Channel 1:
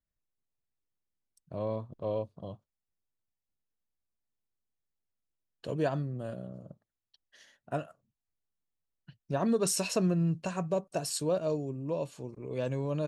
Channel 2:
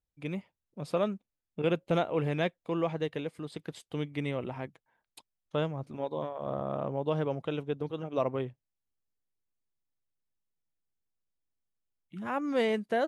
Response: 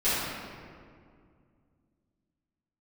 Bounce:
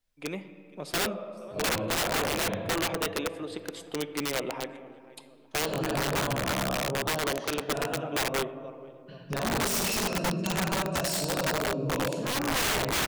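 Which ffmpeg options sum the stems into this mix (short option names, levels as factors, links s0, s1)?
-filter_complex "[0:a]equalizer=f=3800:t=o:w=2.3:g=5.5,acompressor=threshold=0.0126:ratio=2.5,volume=1,asplit=3[s0][s1][s2];[s1]volume=0.531[s3];[s2]volume=0.0794[s4];[1:a]highpass=310,acontrast=58,volume=0.841,asplit=4[s5][s6][s7][s8];[s6]volume=0.0668[s9];[s7]volume=0.0841[s10];[s8]apad=whole_len=576429[s11];[s0][s11]sidechaincompress=threshold=0.0126:ratio=5:attack=12:release=944[s12];[2:a]atrim=start_sample=2205[s13];[s3][s9]amix=inputs=2:normalize=0[s14];[s14][s13]afir=irnorm=-1:irlink=0[s15];[s4][s10]amix=inputs=2:normalize=0,aecho=0:1:474|948|1422|1896|2370|2844:1|0.45|0.202|0.0911|0.041|0.0185[s16];[s12][s5][s15][s16]amix=inputs=4:normalize=0,aeval=exprs='(mod(12.6*val(0)+1,2)-1)/12.6':c=same"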